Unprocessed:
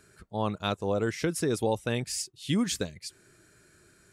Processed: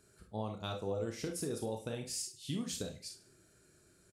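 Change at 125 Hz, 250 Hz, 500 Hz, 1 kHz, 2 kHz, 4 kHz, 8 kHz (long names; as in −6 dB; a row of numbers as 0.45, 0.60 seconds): −9.0, −10.5, −9.0, −11.5, −14.0, −8.5, −6.0 decibels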